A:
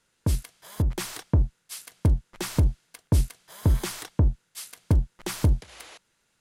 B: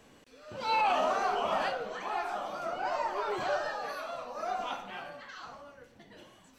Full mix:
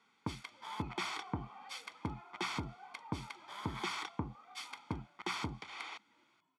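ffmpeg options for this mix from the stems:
-filter_complex "[0:a]tiltshelf=f=970:g=-3.5,alimiter=limit=-23.5dB:level=0:latency=1:release=53,volume=-0.5dB[a];[1:a]asoftclip=type=tanh:threshold=-32.5dB,asplit=2[b][c];[c]adelay=2.2,afreqshift=0.72[d];[b][d]amix=inputs=2:normalize=1,volume=-16.5dB[e];[a][e]amix=inputs=2:normalize=0,highpass=250,lowpass=3k,equalizer=f=820:t=o:w=0.21:g=5,aecho=1:1:0.9:0.71"

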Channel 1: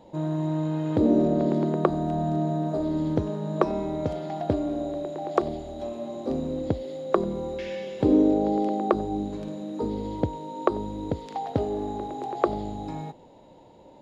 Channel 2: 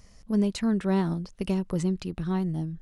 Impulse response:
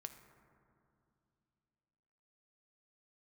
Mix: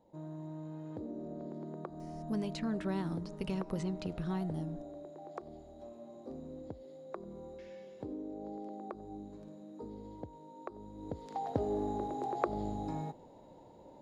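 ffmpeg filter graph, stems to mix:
-filter_complex "[0:a]equalizer=f=2.9k:t=o:w=1.1:g=-7.5,acompressor=threshold=-24dB:ratio=4,volume=-4dB,afade=t=in:st=10.93:d=0.64:silence=0.251189[a];[1:a]acrossover=split=740|5800[b][c][d];[b]acompressor=threshold=-29dB:ratio=4[e];[c]acompressor=threshold=-38dB:ratio=4[f];[d]acompressor=threshold=-60dB:ratio=4[g];[e][f][g]amix=inputs=3:normalize=0,adelay=2000,volume=-7dB,asplit=2[h][i];[i]volume=-5.5dB[j];[2:a]atrim=start_sample=2205[k];[j][k]afir=irnorm=-1:irlink=0[l];[a][h][l]amix=inputs=3:normalize=0"

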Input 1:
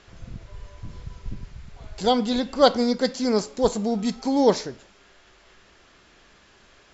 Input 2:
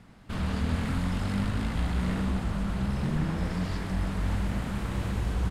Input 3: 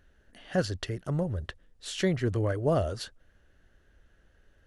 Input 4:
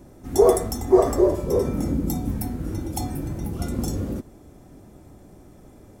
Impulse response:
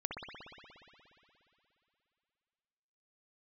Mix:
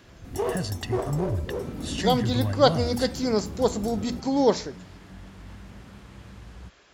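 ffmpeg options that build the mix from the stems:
-filter_complex "[0:a]bandreject=f=60:t=h:w=6,bandreject=f=120:t=h:w=6,bandreject=f=180:t=h:w=6,bandreject=f=240:t=h:w=6,volume=-2dB[a];[1:a]adelay=1200,volume=-14.5dB[b];[2:a]aecho=1:1:1.1:0.65,acrossover=split=170|3000[c][d][e];[d]acompressor=threshold=-38dB:ratio=2[f];[c][f][e]amix=inputs=3:normalize=0,volume=0.5dB[g];[3:a]aeval=exprs='clip(val(0),-1,0.1)':c=same,volume=-9.5dB[h];[a][b][g][h]amix=inputs=4:normalize=0,highpass=44"

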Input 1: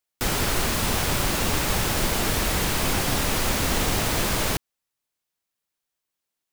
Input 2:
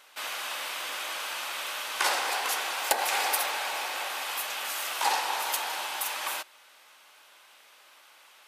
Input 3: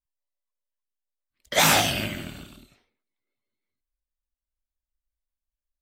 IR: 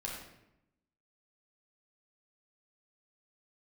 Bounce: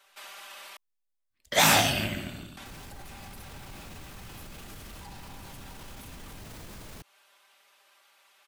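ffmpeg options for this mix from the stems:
-filter_complex "[0:a]adelay=2450,volume=-13dB[a];[1:a]aecho=1:1:5.1:0.75,volume=-8.5dB,asplit=3[b][c][d];[b]atrim=end=0.77,asetpts=PTS-STARTPTS,afade=t=out:st=0.766:d=0.004:c=hsin[e];[c]atrim=start=0.77:end=2.57,asetpts=PTS-STARTPTS,volume=0[f];[d]atrim=start=2.57,asetpts=PTS-STARTPTS,afade=t=in:d=0.004:c=hsin[g];[e][f][g]concat=n=3:v=0:a=1[h];[2:a]volume=-3.5dB,asplit=2[i][j];[j]volume=-8dB[k];[a][h]amix=inputs=2:normalize=0,acrossover=split=280[l][m];[m]acompressor=threshold=-42dB:ratio=4[n];[l][n]amix=inputs=2:normalize=0,alimiter=level_in=12dB:limit=-24dB:level=0:latency=1:release=25,volume=-12dB,volume=0dB[o];[3:a]atrim=start_sample=2205[p];[k][p]afir=irnorm=-1:irlink=0[q];[i][o][q]amix=inputs=3:normalize=0"

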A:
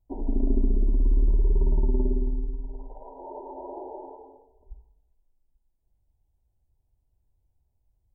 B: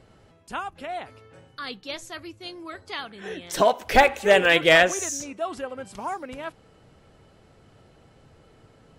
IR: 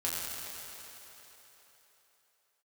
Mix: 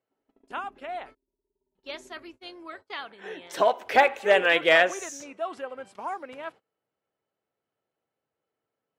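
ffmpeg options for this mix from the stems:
-filter_complex "[0:a]adynamicequalizer=threshold=0.0126:dfrequency=150:dqfactor=1:tfrequency=150:tqfactor=1:attack=5:release=100:ratio=0.375:range=2:mode=cutabove:tftype=bell,volume=-17dB[a];[1:a]volume=-2dB,asplit=3[b][c][d];[b]atrim=end=1.15,asetpts=PTS-STARTPTS,afade=t=out:st=1.146:d=0.004:c=hsin[e];[c]atrim=start=1.15:end=1.75,asetpts=PTS-STARTPTS,volume=0[f];[d]atrim=start=1.75,asetpts=PTS-STARTPTS,afade=t=in:d=0.004:c=hsin[g];[e][f][g]concat=n=3:v=0:a=1[h];[a][h]amix=inputs=2:normalize=0,highpass=100,agate=range=-25dB:threshold=-44dB:ratio=16:detection=peak,bass=f=250:g=-13,treble=f=4k:g=-9"

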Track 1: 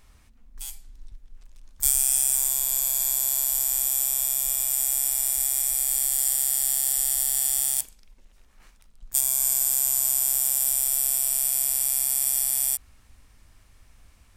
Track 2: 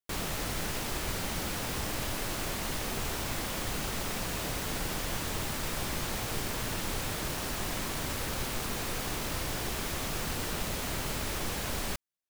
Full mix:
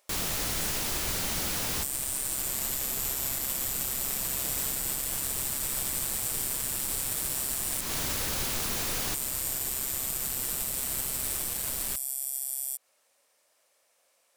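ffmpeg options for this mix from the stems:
-filter_complex "[0:a]highpass=f=550:t=q:w=4.9,volume=-12dB[a];[1:a]volume=-1dB[b];[a][b]amix=inputs=2:normalize=0,highshelf=f=3.6k:g=10,alimiter=limit=-16.5dB:level=0:latency=1:release=131"

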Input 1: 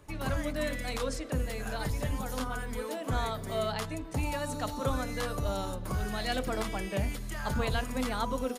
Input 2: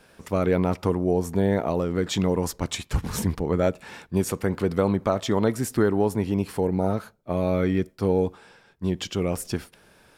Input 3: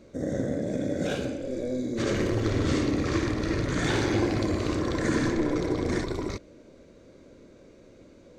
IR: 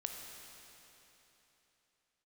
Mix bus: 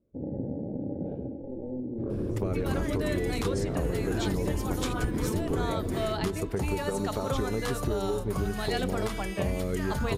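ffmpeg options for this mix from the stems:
-filter_complex "[0:a]adelay=2450,volume=2dB[a];[1:a]equalizer=f=410:t=o:w=0.25:g=12.5,acompressor=threshold=-26dB:ratio=6,lowshelf=f=160:g=8.5,adelay=2100,volume=-3dB[b];[2:a]afwtdn=0.0251,lowpass=2.9k,tiltshelf=f=850:g=10,volume=-12dB[c];[a][b][c]amix=inputs=3:normalize=0,acompressor=threshold=-24dB:ratio=6"

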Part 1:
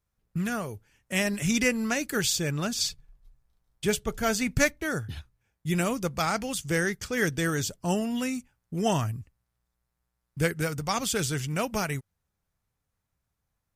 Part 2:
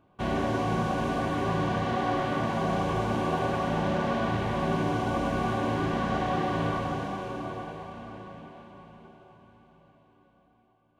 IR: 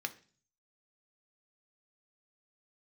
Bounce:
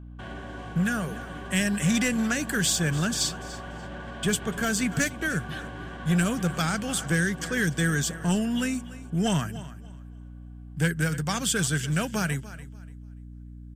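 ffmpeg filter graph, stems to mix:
-filter_complex "[0:a]lowshelf=f=110:t=q:w=3:g=-13,asoftclip=type=tanh:threshold=-16.5dB,adelay=400,volume=-0.5dB,asplit=2[a][b];[b]volume=-17.5dB[c];[1:a]alimiter=level_in=3.5dB:limit=-24dB:level=0:latency=1:release=276,volume=-3.5dB,volume=-5dB[d];[c]aecho=0:1:291|582|873|1164:1|0.23|0.0529|0.0122[e];[a][d][e]amix=inputs=3:normalize=0,equalizer=f=1.6k:t=o:w=0.33:g=12,equalizer=f=3.15k:t=o:w=0.33:g=7,equalizer=f=8k:t=o:w=0.33:g=8,acrossover=split=360|3000[f][g][h];[g]acompressor=threshold=-27dB:ratio=6[i];[f][i][h]amix=inputs=3:normalize=0,aeval=exprs='val(0)+0.00891*(sin(2*PI*60*n/s)+sin(2*PI*2*60*n/s)/2+sin(2*PI*3*60*n/s)/3+sin(2*PI*4*60*n/s)/4+sin(2*PI*5*60*n/s)/5)':c=same"

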